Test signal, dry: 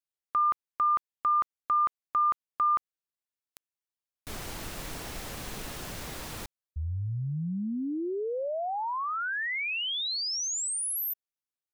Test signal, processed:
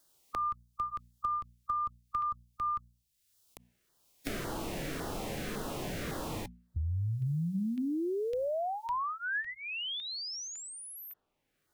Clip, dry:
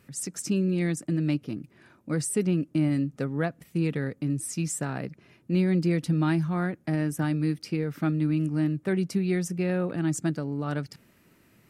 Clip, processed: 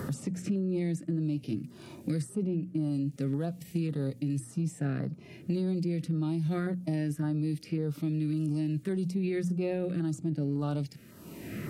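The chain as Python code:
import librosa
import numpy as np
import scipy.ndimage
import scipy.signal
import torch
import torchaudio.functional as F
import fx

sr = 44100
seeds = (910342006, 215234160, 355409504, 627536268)

p1 = fx.filter_lfo_notch(x, sr, shape='saw_down', hz=1.8, low_hz=750.0, high_hz=2700.0, q=0.88)
p2 = fx.hum_notches(p1, sr, base_hz=60, count=4)
p3 = fx.over_compress(p2, sr, threshold_db=-31.0, ratio=-0.5)
p4 = p2 + (p3 * 10.0 ** (2.0 / 20.0))
p5 = fx.hpss(p4, sr, part='percussive', gain_db=-14)
p6 = fx.band_squash(p5, sr, depth_pct=100)
y = p6 * 10.0 ** (-7.0 / 20.0)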